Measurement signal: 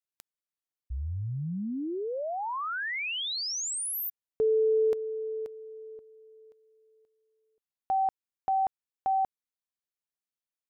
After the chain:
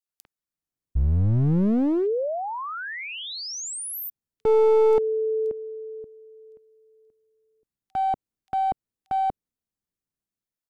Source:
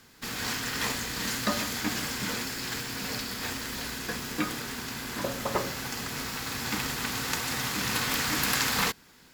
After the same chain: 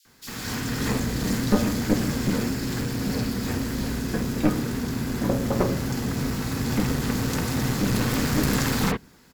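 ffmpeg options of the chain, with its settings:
-filter_complex "[0:a]acrossover=split=3000[a][b];[a]adelay=50[c];[c][b]amix=inputs=2:normalize=0,acrossover=split=310|3800[d][e][f];[d]dynaudnorm=f=160:g=7:m=15dB[g];[g][e][f]amix=inputs=3:normalize=0,aeval=exprs='clip(val(0),-1,0.0668)':c=same,adynamicequalizer=threshold=0.0158:dfrequency=520:dqfactor=0.96:tfrequency=520:tqfactor=0.96:attack=5:release=100:ratio=0.375:range=2:mode=boostabove:tftype=bell"

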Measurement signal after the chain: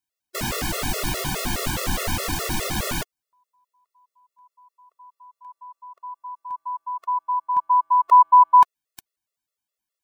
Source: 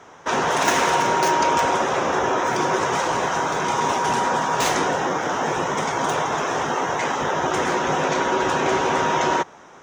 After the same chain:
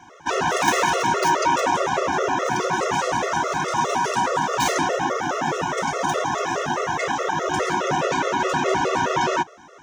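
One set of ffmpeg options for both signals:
-af "afftfilt=real='re*gt(sin(2*PI*4.8*pts/sr)*(1-2*mod(floor(b*sr/1024/360),2)),0)':imag='im*gt(sin(2*PI*4.8*pts/sr)*(1-2*mod(floor(b*sr/1024/360),2)),0)':win_size=1024:overlap=0.75,volume=2.5dB"

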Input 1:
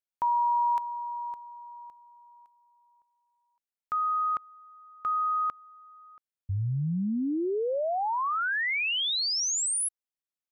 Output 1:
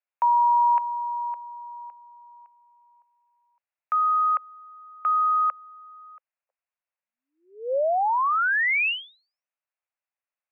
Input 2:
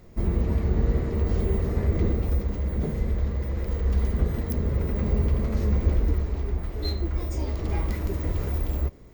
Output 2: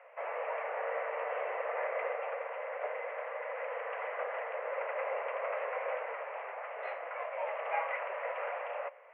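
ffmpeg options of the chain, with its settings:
-af "asuperpass=centerf=1200:order=20:qfactor=0.53,volume=6dB"

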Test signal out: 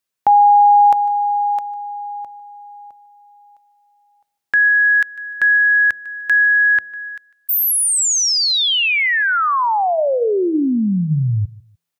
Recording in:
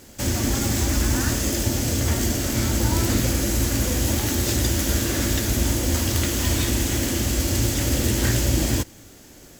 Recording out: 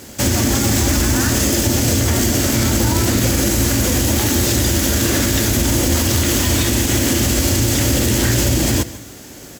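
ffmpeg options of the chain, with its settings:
-filter_complex "[0:a]highpass=66,bandreject=f=165.3:t=h:w=4,bandreject=f=330.6:t=h:w=4,bandreject=f=495.9:t=h:w=4,bandreject=f=661.2:t=h:w=4,asplit=2[a][b];[b]aecho=0:1:150|300:0.0891|0.0241[c];[a][c]amix=inputs=2:normalize=0,alimiter=level_in=15.5dB:limit=-1dB:release=50:level=0:latency=1,volume=-5.5dB"

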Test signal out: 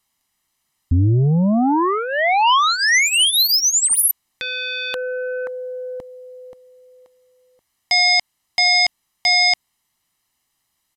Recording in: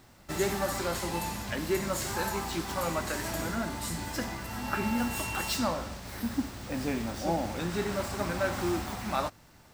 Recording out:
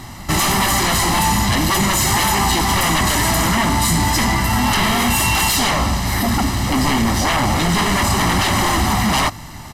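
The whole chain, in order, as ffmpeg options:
-af "aeval=exprs='0.188*sin(PI/2*7.08*val(0)/0.188)':c=same,aecho=1:1:1:0.61,aresample=32000,aresample=44100"

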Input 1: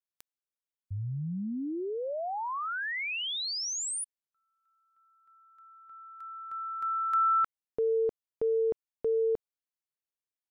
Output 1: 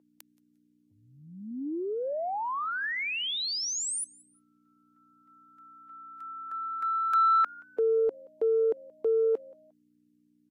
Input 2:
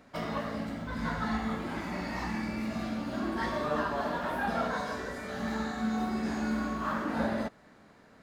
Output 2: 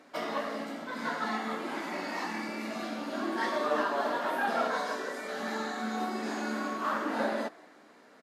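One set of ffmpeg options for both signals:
-filter_complex "[0:a]aeval=exprs='val(0)+0.002*(sin(2*PI*60*n/s)+sin(2*PI*2*60*n/s)/2+sin(2*PI*3*60*n/s)/3+sin(2*PI*4*60*n/s)/4+sin(2*PI*5*60*n/s)/5)':c=same,highpass=f=270:w=0.5412,highpass=f=270:w=1.3066,asplit=2[a][b];[b]asplit=2[c][d];[c]adelay=176,afreqshift=87,volume=-24dB[e];[d]adelay=352,afreqshift=174,volume=-34.5dB[f];[e][f]amix=inputs=2:normalize=0[g];[a][g]amix=inputs=2:normalize=0,aeval=exprs='0.112*(cos(1*acos(clip(val(0)/0.112,-1,1)))-cos(1*PI/2))+0.00562*(cos(3*acos(clip(val(0)/0.112,-1,1)))-cos(3*PI/2))':c=same,volume=3.5dB" -ar 44100 -c:a libvorbis -b:a 48k

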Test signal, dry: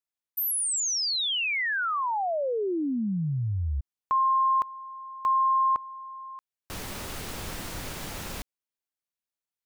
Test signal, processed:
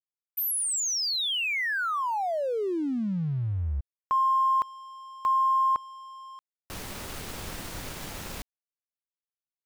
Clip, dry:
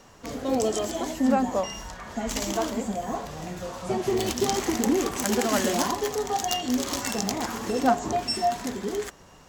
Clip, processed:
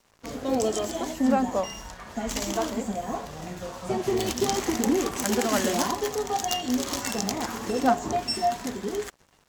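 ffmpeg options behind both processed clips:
-af "aeval=exprs='sgn(val(0))*max(abs(val(0))-0.00335,0)':c=same"

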